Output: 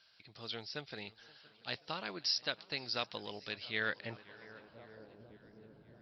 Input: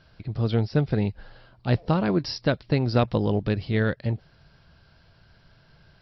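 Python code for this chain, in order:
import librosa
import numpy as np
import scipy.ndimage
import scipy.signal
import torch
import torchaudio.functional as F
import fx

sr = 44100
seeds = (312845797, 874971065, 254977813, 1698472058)

y = fx.echo_swing(x, sr, ms=1140, ratio=1.5, feedback_pct=33, wet_db=-24.0)
y = fx.filter_sweep_bandpass(y, sr, from_hz=4800.0, to_hz=350.0, start_s=3.47, end_s=5.4, q=0.93)
y = fx.echo_warbled(y, sr, ms=528, feedback_pct=53, rate_hz=2.8, cents=118, wet_db=-23)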